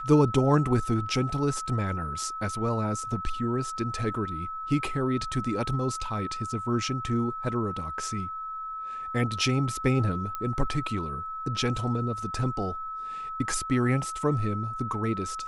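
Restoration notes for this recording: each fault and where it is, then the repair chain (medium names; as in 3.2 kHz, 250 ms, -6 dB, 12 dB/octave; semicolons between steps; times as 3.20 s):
whine 1.3 kHz -33 dBFS
10.35 s: pop -19 dBFS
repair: de-click; band-stop 1.3 kHz, Q 30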